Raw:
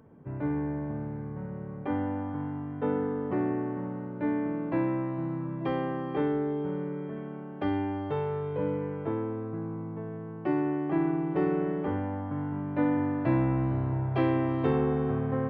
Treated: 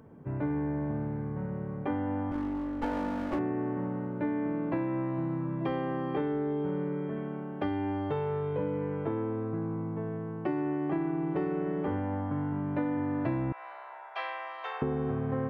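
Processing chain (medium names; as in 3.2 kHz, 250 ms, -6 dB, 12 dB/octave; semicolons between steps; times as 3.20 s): 2.31–3.39 s: comb filter that takes the minimum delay 3.5 ms; 13.52–14.82 s: Bessel high-pass 1.1 kHz, order 8; compression, threshold -30 dBFS, peak gain reduction 9 dB; trim +2.5 dB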